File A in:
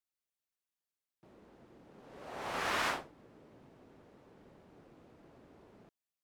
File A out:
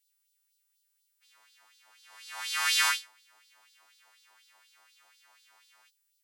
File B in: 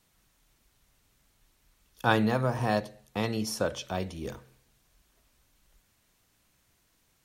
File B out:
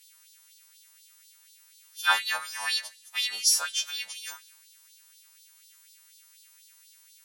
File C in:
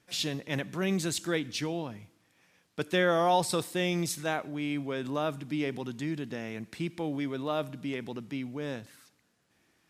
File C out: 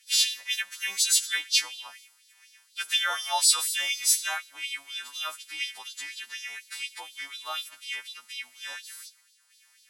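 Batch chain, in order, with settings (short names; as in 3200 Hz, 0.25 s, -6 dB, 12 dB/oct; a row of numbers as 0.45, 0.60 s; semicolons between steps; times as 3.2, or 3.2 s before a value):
frequency quantiser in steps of 2 st; low shelf 81 Hz -6.5 dB; LFO high-pass sine 4.1 Hz 830–4100 Hz; passive tone stack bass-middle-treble 5-5-5; match loudness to -27 LUFS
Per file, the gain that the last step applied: +10.5, +9.5, +9.5 dB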